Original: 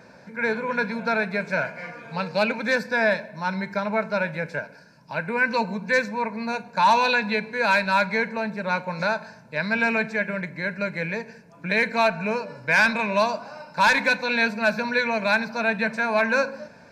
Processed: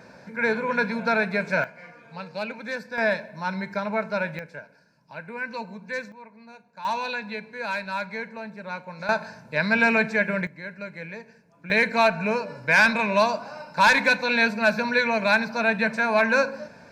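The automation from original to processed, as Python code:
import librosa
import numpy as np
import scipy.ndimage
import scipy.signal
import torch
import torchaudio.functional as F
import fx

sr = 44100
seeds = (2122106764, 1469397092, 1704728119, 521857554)

y = fx.gain(x, sr, db=fx.steps((0.0, 1.0), (1.64, -9.0), (2.98, -2.0), (4.39, -10.0), (6.12, -19.0), (6.85, -9.0), (9.09, 2.5), (10.47, -9.0), (11.7, 1.0)))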